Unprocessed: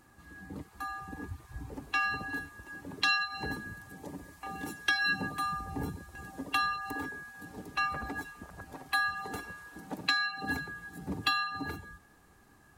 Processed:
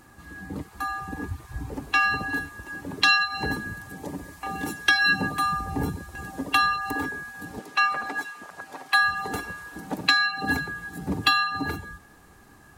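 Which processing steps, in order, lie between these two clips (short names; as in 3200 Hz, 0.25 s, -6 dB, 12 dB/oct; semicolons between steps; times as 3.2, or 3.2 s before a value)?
7.59–9.02 weighting filter A; gain +8.5 dB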